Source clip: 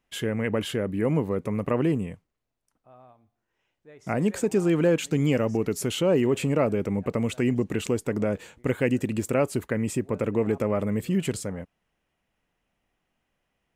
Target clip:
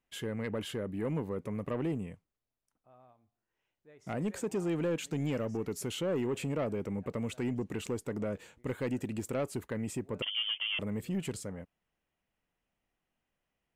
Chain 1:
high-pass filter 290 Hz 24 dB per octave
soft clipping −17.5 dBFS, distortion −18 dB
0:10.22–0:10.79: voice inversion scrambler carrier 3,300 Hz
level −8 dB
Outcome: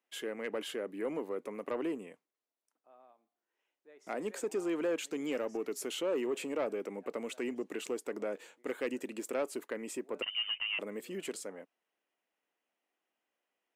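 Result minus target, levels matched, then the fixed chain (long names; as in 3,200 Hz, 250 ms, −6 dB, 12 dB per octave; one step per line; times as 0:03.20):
250 Hz band −2.5 dB
soft clipping −17.5 dBFS, distortion −16 dB
0:10.22–0:10.79: voice inversion scrambler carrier 3,300 Hz
level −8 dB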